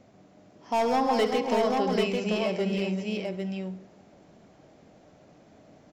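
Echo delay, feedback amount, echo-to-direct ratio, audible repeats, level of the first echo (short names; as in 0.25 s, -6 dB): 68 ms, no steady repeat, -1.0 dB, 5, -14.5 dB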